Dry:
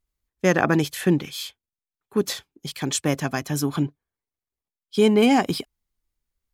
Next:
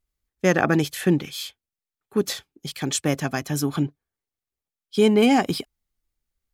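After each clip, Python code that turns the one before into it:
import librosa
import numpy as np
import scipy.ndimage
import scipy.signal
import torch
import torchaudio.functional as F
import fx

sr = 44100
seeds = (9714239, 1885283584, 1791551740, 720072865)

y = fx.notch(x, sr, hz=1000.0, q=11.0)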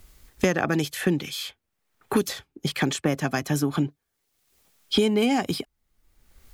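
y = fx.band_squash(x, sr, depth_pct=100)
y = F.gain(torch.from_numpy(y), -2.0).numpy()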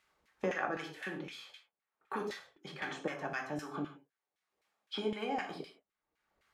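y = fx.rev_gated(x, sr, seeds[0], gate_ms=200, shape='falling', drr_db=0.5)
y = fx.filter_lfo_bandpass(y, sr, shape='saw_down', hz=3.9, low_hz=510.0, high_hz=2100.0, q=1.1)
y = F.gain(torch.from_numpy(y), -9.0).numpy()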